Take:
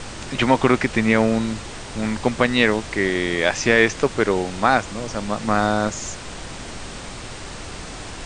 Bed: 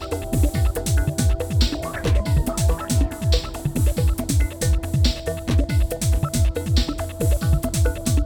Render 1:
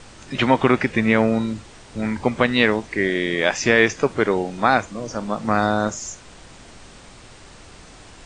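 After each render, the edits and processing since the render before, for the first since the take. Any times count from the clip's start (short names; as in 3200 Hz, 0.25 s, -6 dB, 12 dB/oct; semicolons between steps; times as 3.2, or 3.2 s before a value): noise print and reduce 10 dB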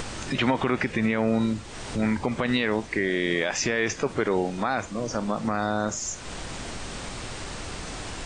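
upward compressor, threshold -25 dBFS; limiter -13 dBFS, peak gain reduction 11.5 dB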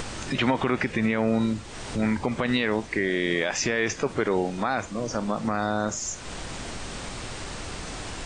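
nothing audible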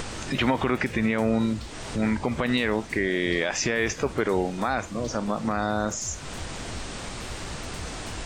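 add bed -23 dB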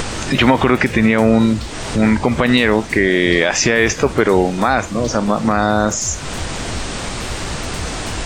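gain +11 dB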